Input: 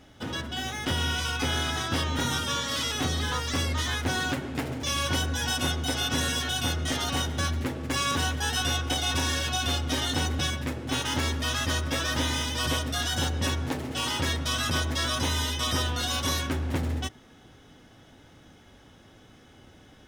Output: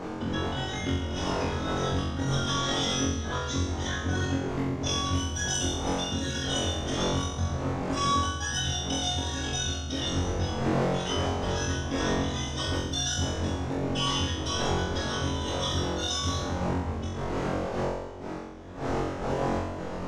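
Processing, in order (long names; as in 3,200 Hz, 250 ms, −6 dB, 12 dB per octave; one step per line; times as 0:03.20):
spectral envelope exaggerated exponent 2
wind on the microphone 590 Hz −31 dBFS
parametric band 6,500 Hz +9 dB 0.88 octaves
downward compressor, threshold −29 dBFS, peak gain reduction 16.5 dB
flutter between parallel walls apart 3.8 metres, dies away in 0.87 s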